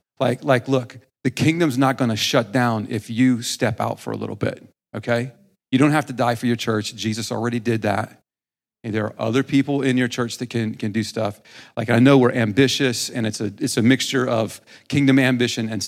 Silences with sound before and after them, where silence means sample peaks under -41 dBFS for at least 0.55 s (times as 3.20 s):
8.15–8.84 s